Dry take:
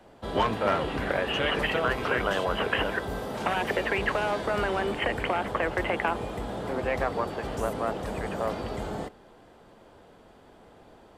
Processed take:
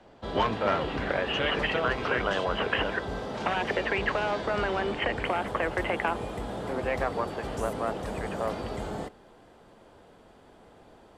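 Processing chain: Chebyshev low-pass 5.5 kHz, order 2, from 5.22 s 11 kHz

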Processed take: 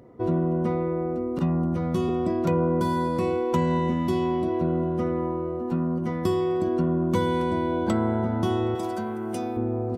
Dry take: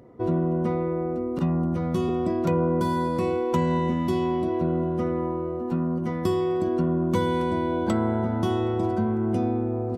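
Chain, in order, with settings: 8.75–9.57 s: RIAA curve recording

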